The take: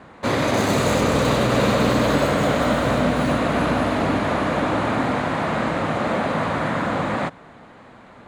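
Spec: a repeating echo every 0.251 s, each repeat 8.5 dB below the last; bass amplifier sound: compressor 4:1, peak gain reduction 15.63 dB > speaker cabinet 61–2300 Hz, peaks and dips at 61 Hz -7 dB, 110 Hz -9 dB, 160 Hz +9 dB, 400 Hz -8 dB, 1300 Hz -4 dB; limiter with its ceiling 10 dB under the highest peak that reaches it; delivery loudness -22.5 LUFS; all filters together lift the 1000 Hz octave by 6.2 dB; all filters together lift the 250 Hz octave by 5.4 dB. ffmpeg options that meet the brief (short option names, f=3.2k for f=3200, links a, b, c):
-af "equalizer=f=250:t=o:g=5.5,equalizer=f=1k:t=o:g=9,alimiter=limit=-12.5dB:level=0:latency=1,aecho=1:1:251|502|753|1004:0.376|0.143|0.0543|0.0206,acompressor=threshold=-35dB:ratio=4,highpass=f=61:w=0.5412,highpass=f=61:w=1.3066,equalizer=f=61:t=q:w=4:g=-7,equalizer=f=110:t=q:w=4:g=-9,equalizer=f=160:t=q:w=4:g=9,equalizer=f=400:t=q:w=4:g=-8,equalizer=f=1.3k:t=q:w=4:g=-4,lowpass=f=2.3k:w=0.5412,lowpass=f=2.3k:w=1.3066,volume=13dB"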